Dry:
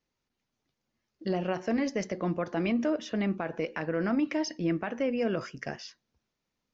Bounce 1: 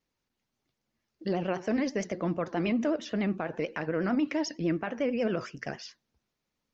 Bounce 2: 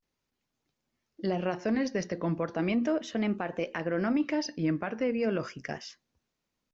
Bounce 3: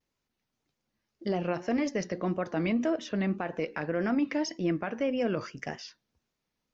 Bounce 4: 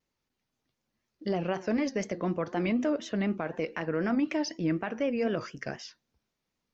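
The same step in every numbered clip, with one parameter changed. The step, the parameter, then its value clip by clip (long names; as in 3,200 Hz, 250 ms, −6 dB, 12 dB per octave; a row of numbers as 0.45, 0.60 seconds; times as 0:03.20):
pitch vibrato, speed: 11, 0.36, 1.8, 4 Hertz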